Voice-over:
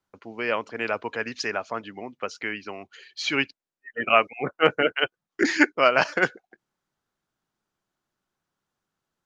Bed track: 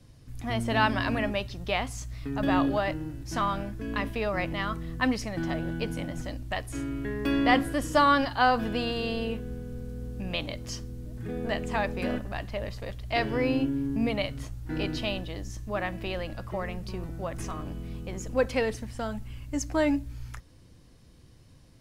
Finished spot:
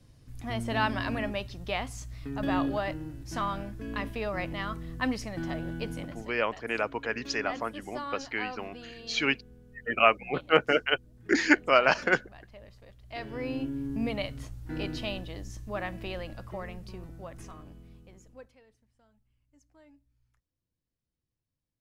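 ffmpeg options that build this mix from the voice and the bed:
ffmpeg -i stem1.wav -i stem2.wav -filter_complex "[0:a]adelay=5900,volume=-2.5dB[link_01];[1:a]volume=9.5dB,afade=type=out:start_time=5.95:duration=0.43:silence=0.223872,afade=type=in:start_time=12.97:duration=1:silence=0.223872,afade=type=out:start_time=16.03:duration=2.54:silence=0.0316228[link_02];[link_01][link_02]amix=inputs=2:normalize=0" out.wav

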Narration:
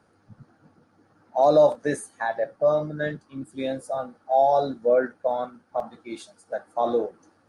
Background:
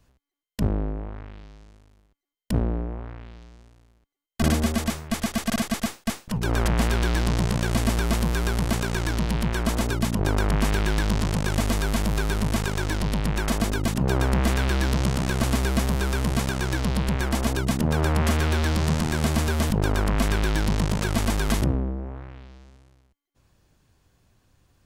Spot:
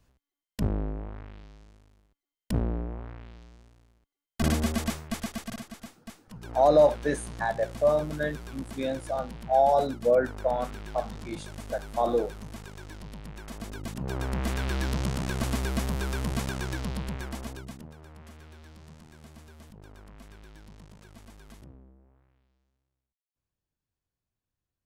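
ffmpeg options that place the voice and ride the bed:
ffmpeg -i stem1.wav -i stem2.wav -filter_complex "[0:a]adelay=5200,volume=-2dB[link_01];[1:a]volume=7.5dB,afade=type=out:start_time=4.92:duration=0.74:silence=0.211349,afade=type=in:start_time=13.47:duration=1.32:silence=0.266073,afade=type=out:start_time=16.52:duration=1.43:silence=0.0891251[link_02];[link_01][link_02]amix=inputs=2:normalize=0" out.wav

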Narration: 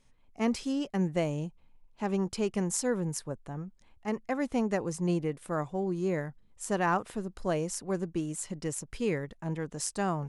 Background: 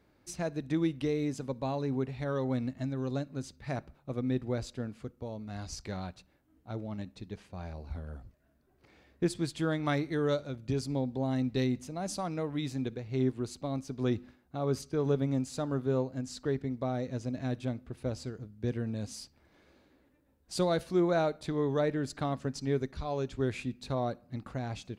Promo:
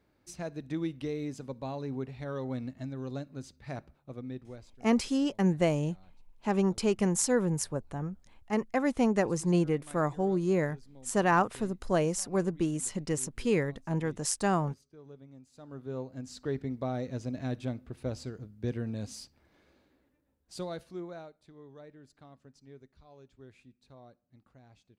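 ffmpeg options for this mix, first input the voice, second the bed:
ffmpeg -i stem1.wav -i stem2.wav -filter_complex "[0:a]adelay=4450,volume=3dB[link_01];[1:a]volume=17.5dB,afade=type=out:start_time=3.81:duration=0.97:silence=0.125893,afade=type=in:start_time=15.52:duration=1.16:silence=0.0841395,afade=type=out:start_time=19.12:duration=2.22:silence=0.0891251[link_02];[link_01][link_02]amix=inputs=2:normalize=0" out.wav

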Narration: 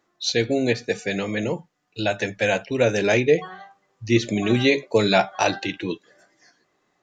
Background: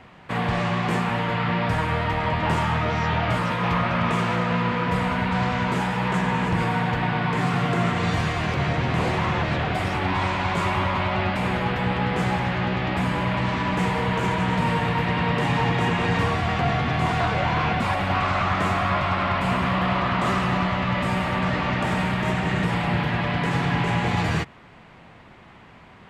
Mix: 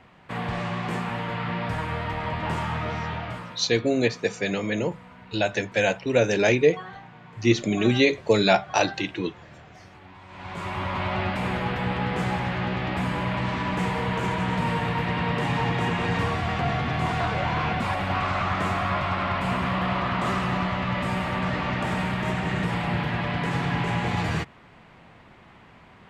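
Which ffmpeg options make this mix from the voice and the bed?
ffmpeg -i stem1.wav -i stem2.wav -filter_complex "[0:a]adelay=3350,volume=-1dB[link_01];[1:a]volume=15dB,afade=type=out:start_time=2.92:duration=0.74:silence=0.125893,afade=type=in:start_time=10.27:duration=0.83:silence=0.0944061[link_02];[link_01][link_02]amix=inputs=2:normalize=0" out.wav

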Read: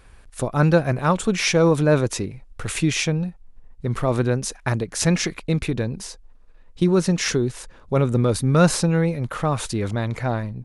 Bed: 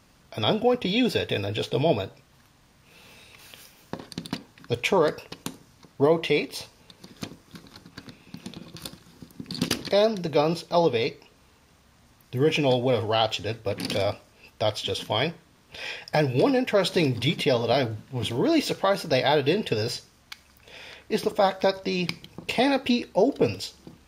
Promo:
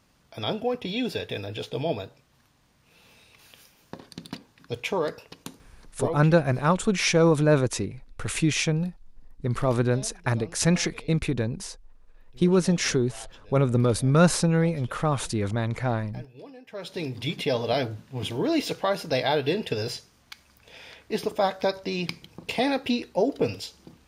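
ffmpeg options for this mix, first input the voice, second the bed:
ffmpeg -i stem1.wav -i stem2.wav -filter_complex "[0:a]adelay=5600,volume=-2.5dB[link_01];[1:a]volume=16dB,afade=type=out:start_time=5.92:duration=0.4:silence=0.11885,afade=type=in:start_time=16.64:duration=0.93:silence=0.0841395[link_02];[link_01][link_02]amix=inputs=2:normalize=0" out.wav

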